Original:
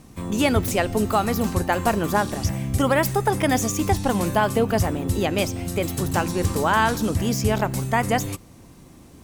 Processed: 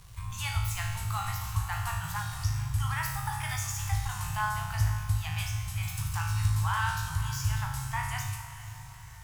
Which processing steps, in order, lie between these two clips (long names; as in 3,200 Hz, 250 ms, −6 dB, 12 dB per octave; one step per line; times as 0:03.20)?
elliptic band-stop filter 130–930 Hz, stop band 40 dB
low-shelf EQ 150 Hz +9 dB
hum removal 167.9 Hz, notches 32
in parallel at +2 dB: downward compressor, threshold −30 dBFS, peak gain reduction 18 dB
on the sum: surface crackle 120 per second −29 dBFS
tuned comb filter 53 Hz, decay 1 s, harmonics all, mix 90%
on a send: feedback delay with all-pass diffusion 476 ms, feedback 54%, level −13 dB